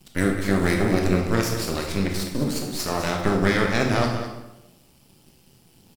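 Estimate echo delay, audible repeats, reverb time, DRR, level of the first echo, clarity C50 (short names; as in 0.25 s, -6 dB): 0.204 s, 1, 0.95 s, 1.0 dB, -10.0 dB, 4.0 dB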